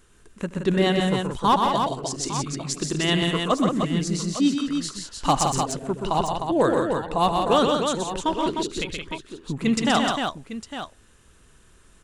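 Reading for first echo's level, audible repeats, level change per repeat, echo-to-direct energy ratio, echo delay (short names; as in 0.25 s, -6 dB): -20.0 dB, 5, no steady repeat, -0.5 dB, 75 ms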